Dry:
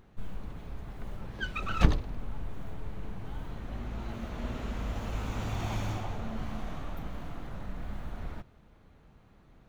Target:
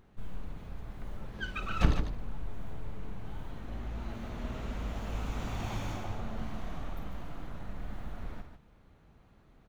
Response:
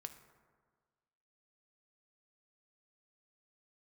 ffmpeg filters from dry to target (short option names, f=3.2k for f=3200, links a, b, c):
-af "aecho=1:1:52|147:0.282|0.398,volume=-3dB"